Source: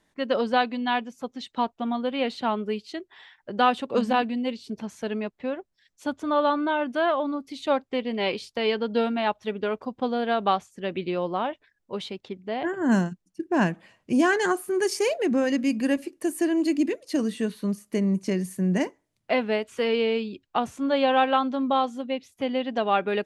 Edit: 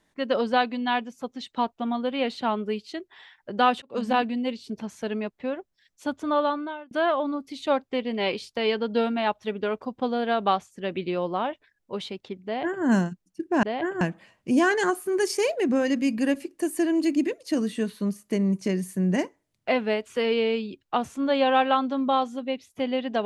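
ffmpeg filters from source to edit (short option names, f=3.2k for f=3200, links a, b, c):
-filter_complex "[0:a]asplit=5[a][b][c][d][e];[a]atrim=end=3.82,asetpts=PTS-STARTPTS,afade=t=out:st=3.816:d=0.004:c=hsin[f];[b]atrim=start=3.82:end=6.91,asetpts=PTS-STARTPTS,afade=t=in:d=0.31,afade=t=out:st=2.52:d=0.57[g];[c]atrim=start=6.91:end=13.632,asetpts=PTS-STARTPTS,afade=t=in:d=0.004:c=hsin[h];[d]atrim=start=12.448:end=12.832[i];[e]atrim=start=13.628[j];[f][g][h]concat=n=3:v=0:a=1[k];[k][i]acrossfade=d=0.004:c1=hsin:c2=hsin[l];[l][j]acrossfade=d=0.004:c1=hsin:c2=hsin"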